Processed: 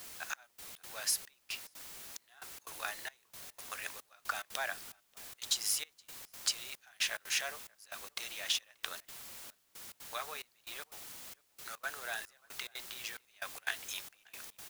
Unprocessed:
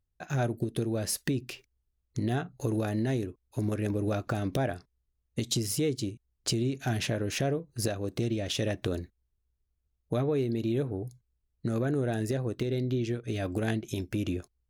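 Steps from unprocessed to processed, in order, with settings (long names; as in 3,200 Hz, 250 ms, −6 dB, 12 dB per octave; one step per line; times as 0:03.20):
high-pass filter 1,000 Hz 24 dB per octave
leveller curve on the samples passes 1
downward compressor, threshold −28 dBFS, peak gain reduction 5.5 dB
background noise white −49 dBFS
gate pattern "xxxx...xx.x" 180 BPM −24 dB
slap from a distant wall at 100 metres, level −26 dB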